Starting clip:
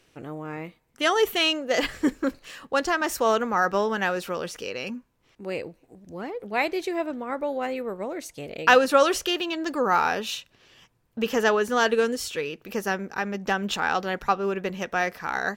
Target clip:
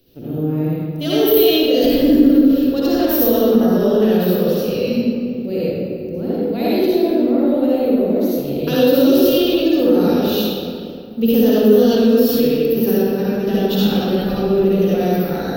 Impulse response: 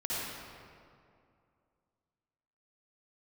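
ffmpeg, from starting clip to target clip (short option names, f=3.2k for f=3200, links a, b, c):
-filter_complex "[0:a]lowshelf=f=110:g=11,bandreject=f=50:t=h:w=6,bandreject=f=100:t=h:w=6,bandreject=f=150:t=h:w=6,bandreject=f=200:t=h:w=6,acrossover=split=490|3000[a][b][c];[b]acompressor=threshold=-25dB:ratio=6[d];[a][d][c]amix=inputs=3:normalize=0,equalizer=f=125:t=o:w=1:g=6,equalizer=f=250:t=o:w=1:g=9,equalizer=f=500:t=o:w=1:g=7,equalizer=f=1k:t=o:w=1:g=-10,equalizer=f=2k:t=o:w=1:g=-10,equalizer=f=4k:t=o:w=1:g=11,equalizer=f=8k:t=o:w=1:g=-11[e];[1:a]atrim=start_sample=2205[f];[e][f]afir=irnorm=-1:irlink=0,asplit=2[g][h];[h]alimiter=limit=-7dB:level=0:latency=1,volume=3dB[i];[g][i]amix=inputs=2:normalize=0,aexciter=amount=14.2:drive=5.9:freq=12k,volume=-7.5dB"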